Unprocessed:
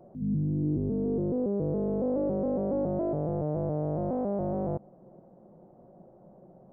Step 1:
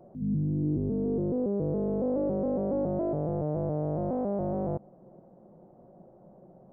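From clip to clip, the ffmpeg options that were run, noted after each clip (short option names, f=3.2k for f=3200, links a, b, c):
-af anull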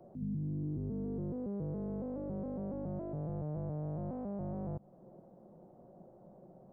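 -filter_complex "[0:a]acrossover=split=200|940[a][b][c];[a]acompressor=threshold=-34dB:ratio=4[d];[b]acompressor=threshold=-43dB:ratio=4[e];[c]acompressor=threshold=-52dB:ratio=4[f];[d][e][f]amix=inputs=3:normalize=0,volume=-3dB"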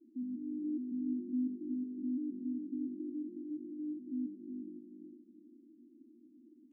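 -af "asuperpass=centerf=280:order=8:qfactor=3.1,aecho=1:1:365|730|1095|1460:0.596|0.185|0.0572|0.0177,volume=7dB" -ar 22050 -c:a libvorbis -b:a 16k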